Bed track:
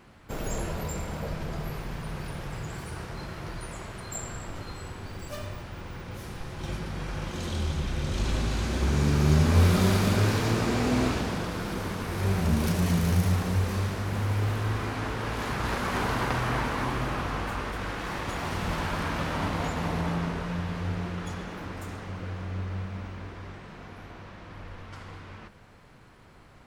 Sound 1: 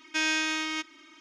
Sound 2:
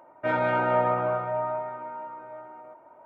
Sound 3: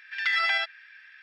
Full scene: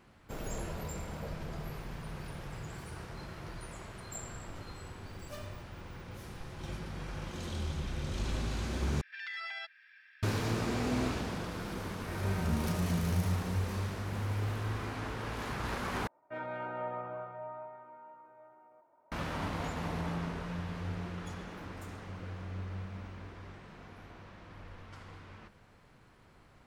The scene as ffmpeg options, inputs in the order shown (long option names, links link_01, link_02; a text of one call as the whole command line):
ffmpeg -i bed.wav -i cue0.wav -i cue1.wav -i cue2.wav -filter_complex "[2:a]asplit=2[link_01][link_02];[0:a]volume=-7dB[link_03];[3:a]alimiter=level_in=0.5dB:limit=-24dB:level=0:latency=1:release=282,volume=-0.5dB[link_04];[link_01]equalizer=frequency=560:width=0.8:gain=-8.5[link_05];[link_03]asplit=3[link_06][link_07][link_08];[link_06]atrim=end=9.014[link_09];[link_04]atrim=end=1.22,asetpts=PTS-STARTPTS,volume=-8.5dB[link_10];[link_07]atrim=start=10.226:end=16.074[link_11];[link_02]atrim=end=3.05,asetpts=PTS-STARTPTS,volume=-15dB[link_12];[link_08]atrim=start=19.116[link_13];[link_05]atrim=end=3.05,asetpts=PTS-STARTPTS,volume=-17.5dB,afade=type=in:duration=0.004:curve=hsin,afade=type=out:start_time=3.046:duration=0.004:curve=hsin,adelay=11830[link_14];[link_09][link_10]acrossfade=duration=0.004:curve1=hsin:curve2=hsin[link_15];[link_15][link_11]acrossfade=duration=0.004:curve1=hsin:curve2=hsin[link_16];[link_16][link_12]acrossfade=duration=0.004:curve1=hsin:curve2=hsin[link_17];[link_17][link_13]acrossfade=duration=0.004:curve1=hsin:curve2=hsin[link_18];[link_18][link_14]amix=inputs=2:normalize=0" out.wav